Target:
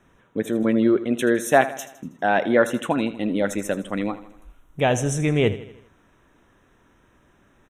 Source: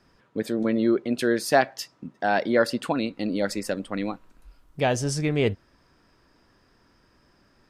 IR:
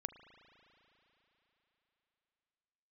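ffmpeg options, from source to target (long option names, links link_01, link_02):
-af "asuperstop=centerf=4700:order=8:qfactor=2.6,aecho=1:1:80|160|240|320|400:0.178|0.0925|0.0481|0.025|0.013,volume=3dB"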